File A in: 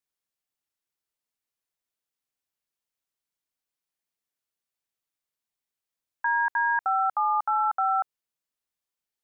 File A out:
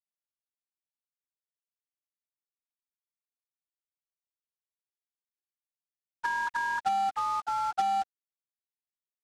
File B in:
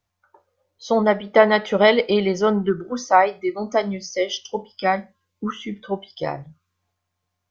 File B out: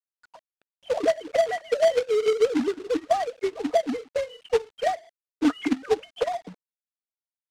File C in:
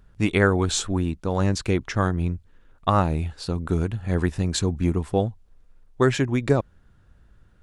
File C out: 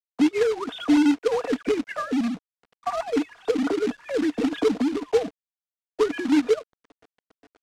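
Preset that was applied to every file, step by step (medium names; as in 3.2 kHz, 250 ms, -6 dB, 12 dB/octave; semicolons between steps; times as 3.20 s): formants replaced by sine waves; comb 4.2 ms, depth 59%; compression 10:1, threshold -28 dBFS; small resonant body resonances 280/430/630 Hz, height 12 dB, ringing for 50 ms; frequency shift +15 Hz; companded quantiser 4-bit; distance through air 74 m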